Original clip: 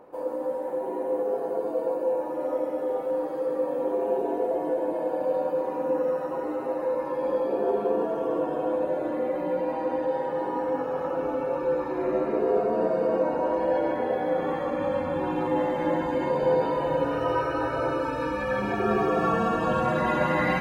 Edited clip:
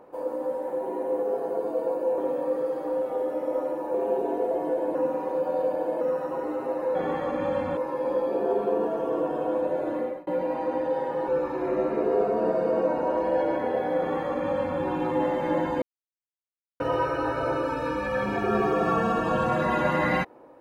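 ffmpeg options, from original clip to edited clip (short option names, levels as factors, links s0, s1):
-filter_complex "[0:a]asplit=11[s0][s1][s2][s3][s4][s5][s6][s7][s8][s9][s10];[s0]atrim=end=2.182[s11];[s1]atrim=start=2.178:end=3.942,asetpts=PTS-STARTPTS,areverse[s12];[s2]atrim=start=3.938:end=4.952[s13];[s3]atrim=start=4.948:end=6.012,asetpts=PTS-STARTPTS,areverse[s14];[s4]atrim=start=6.008:end=6.952[s15];[s5]atrim=start=14.338:end=15.162[s16];[s6]atrim=start=6.948:end=9.45,asetpts=PTS-STARTPTS,afade=t=out:st=2.232:d=0.27[s17];[s7]atrim=start=9.45:end=10.462,asetpts=PTS-STARTPTS,afade=t=in:d=0.004:c=hsin[s18];[s8]atrim=start=11.638:end=16.18,asetpts=PTS-STARTPTS,afade=t=out:st=4.538:d=0.004:c=hsin[s19];[s9]atrim=start=16.18:end=17.16,asetpts=PTS-STARTPTS,volume=0[s20];[s10]atrim=start=17.16,asetpts=PTS-STARTPTS,afade=t=in:d=0.004:c=hsin[s21];[s11][s12]acrossfade=d=0.004:c1=hsin:c2=hsin[s22];[s22][s13]acrossfade=d=0.004:c1=hsin:c2=hsin[s23];[s23][s14]acrossfade=d=0.004:c1=hsin:c2=hsin[s24];[s24][s15]acrossfade=d=0.004:c1=hsin:c2=hsin[s25];[s25][s16]acrossfade=d=0.004:c1=hsin:c2=hsin[s26];[s17][s18]concat=n=2:v=0:a=1[s27];[s26][s27]acrossfade=d=0.004:c1=hsin:c2=hsin[s28];[s19][s20][s21]concat=n=3:v=0:a=1[s29];[s28][s29]acrossfade=d=0.004:c1=hsin:c2=hsin"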